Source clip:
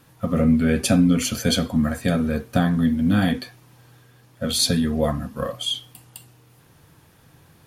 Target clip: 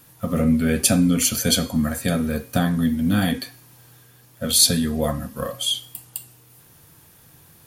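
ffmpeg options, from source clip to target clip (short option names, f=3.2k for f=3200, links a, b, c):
-af "aemphasis=mode=production:type=50kf,bandreject=f=273.5:t=h:w=4,bandreject=f=547:t=h:w=4,bandreject=f=820.5:t=h:w=4,bandreject=f=1.094k:t=h:w=4,bandreject=f=1.3675k:t=h:w=4,bandreject=f=1.641k:t=h:w=4,bandreject=f=1.9145k:t=h:w=4,bandreject=f=2.188k:t=h:w=4,bandreject=f=2.4615k:t=h:w=4,bandreject=f=2.735k:t=h:w=4,bandreject=f=3.0085k:t=h:w=4,bandreject=f=3.282k:t=h:w=4,bandreject=f=3.5555k:t=h:w=4,bandreject=f=3.829k:t=h:w=4,bandreject=f=4.1025k:t=h:w=4,bandreject=f=4.376k:t=h:w=4,bandreject=f=4.6495k:t=h:w=4,bandreject=f=4.923k:t=h:w=4,bandreject=f=5.1965k:t=h:w=4,bandreject=f=5.47k:t=h:w=4,bandreject=f=5.7435k:t=h:w=4,bandreject=f=6.017k:t=h:w=4,bandreject=f=6.2905k:t=h:w=4,bandreject=f=6.564k:t=h:w=4,bandreject=f=6.8375k:t=h:w=4,bandreject=f=7.111k:t=h:w=4,bandreject=f=7.3845k:t=h:w=4,bandreject=f=7.658k:t=h:w=4,bandreject=f=7.9315k:t=h:w=4,bandreject=f=8.205k:t=h:w=4,bandreject=f=8.4785k:t=h:w=4,bandreject=f=8.752k:t=h:w=4,bandreject=f=9.0255k:t=h:w=4,bandreject=f=9.299k:t=h:w=4,bandreject=f=9.5725k:t=h:w=4,bandreject=f=9.846k:t=h:w=4,volume=-1dB"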